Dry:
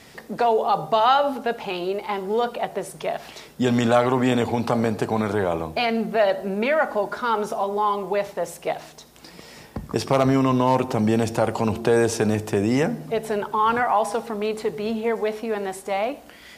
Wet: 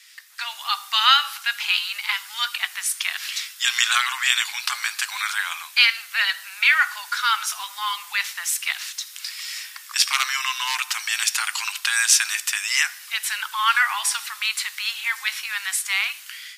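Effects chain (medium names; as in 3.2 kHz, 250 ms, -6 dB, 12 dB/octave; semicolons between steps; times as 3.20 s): Bessel high-pass 2.4 kHz, order 8; level rider gain up to 14 dB; trim +2 dB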